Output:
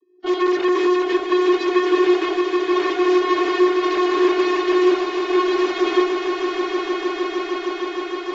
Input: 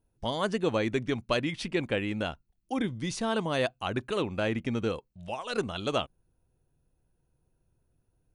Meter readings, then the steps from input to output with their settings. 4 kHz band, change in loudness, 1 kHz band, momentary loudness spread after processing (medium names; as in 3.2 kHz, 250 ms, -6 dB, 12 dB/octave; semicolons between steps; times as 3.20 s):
+8.5 dB, +12.0 dB, +14.0 dB, 7 LU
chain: peaking EQ 320 Hz +11.5 dB 1.3 oct; hum notches 60/120/180/240/300/360/420 Hz; vocoder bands 32, square 362 Hz; in parallel at +2 dB: compressor with a negative ratio -24 dBFS, ratio -0.5; on the sum: hard clipper -22 dBFS, distortion -6 dB; Chebyshev shaper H 5 -18 dB, 8 -16 dB, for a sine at -22 dBFS; three-band isolator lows -23 dB, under 250 Hz, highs -18 dB, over 4.8 kHz; on a send: echo with a slow build-up 154 ms, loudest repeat 8, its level -9.5 dB; on the sum: trim +7.5 dB; AAC 24 kbps 32 kHz